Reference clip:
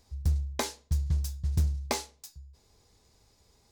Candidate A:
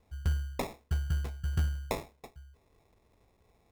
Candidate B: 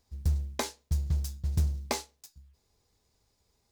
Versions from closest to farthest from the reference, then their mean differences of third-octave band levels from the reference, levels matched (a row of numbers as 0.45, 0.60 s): B, A; 4.0, 6.0 dB